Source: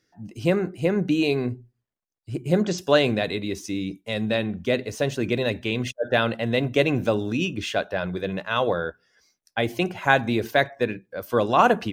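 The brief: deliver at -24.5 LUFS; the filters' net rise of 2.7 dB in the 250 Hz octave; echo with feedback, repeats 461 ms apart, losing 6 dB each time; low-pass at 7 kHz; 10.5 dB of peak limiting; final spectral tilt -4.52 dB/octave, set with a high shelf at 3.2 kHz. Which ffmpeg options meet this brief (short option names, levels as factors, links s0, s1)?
-af "lowpass=7000,equalizer=f=250:t=o:g=3.5,highshelf=f=3200:g=5.5,alimiter=limit=0.266:level=0:latency=1,aecho=1:1:461|922|1383|1844|2305|2766:0.501|0.251|0.125|0.0626|0.0313|0.0157,volume=0.944"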